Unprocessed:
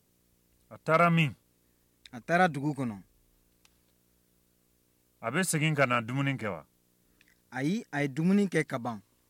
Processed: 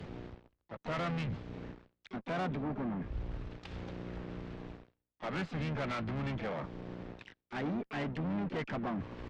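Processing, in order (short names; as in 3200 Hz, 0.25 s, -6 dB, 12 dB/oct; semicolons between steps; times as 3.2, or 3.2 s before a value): reverse; upward compressor, threshold -28 dBFS; reverse; sample leveller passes 5; compressor 12:1, threshold -28 dBFS, peak gain reduction 14 dB; wavefolder -22.5 dBFS; Gaussian blur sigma 3 samples; harmoniser -12 st -17 dB, -3 st -12 dB, +7 st -8 dB; tube stage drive 28 dB, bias 0.3; three-band expander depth 70%; gain -3.5 dB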